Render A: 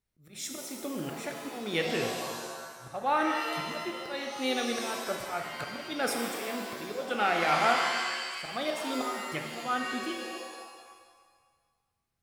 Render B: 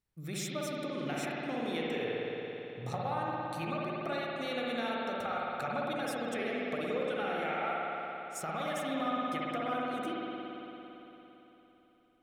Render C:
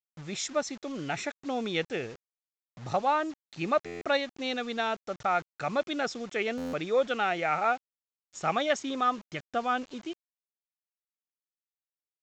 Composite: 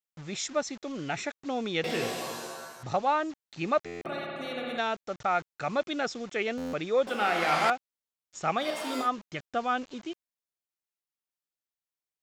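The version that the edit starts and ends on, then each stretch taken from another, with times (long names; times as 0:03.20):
C
0:01.84–0:02.83: punch in from A
0:04.05–0:04.78: punch in from B
0:07.07–0:07.70: punch in from A
0:08.61–0:09.05: punch in from A, crossfade 0.10 s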